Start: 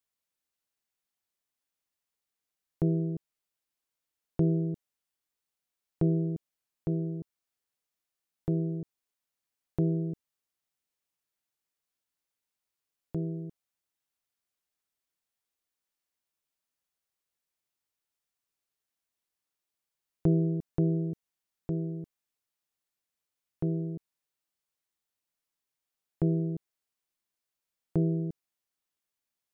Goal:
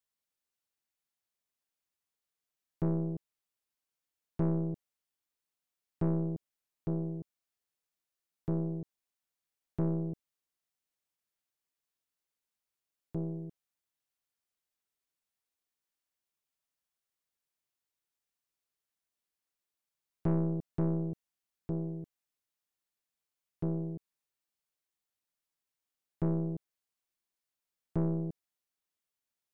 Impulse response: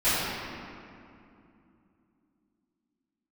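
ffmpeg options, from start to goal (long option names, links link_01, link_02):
-af "aeval=exprs='(tanh(15.8*val(0)+0.6)-tanh(0.6))/15.8':channel_layout=same"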